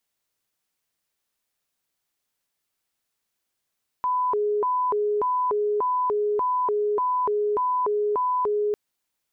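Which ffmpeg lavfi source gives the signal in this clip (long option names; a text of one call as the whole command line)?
ffmpeg -f lavfi -i "aevalsrc='0.0944*sin(2*PI*(708.5*t+291.5/1.7*(0.5-abs(mod(1.7*t,1)-0.5))))':duration=4.7:sample_rate=44100" out.wav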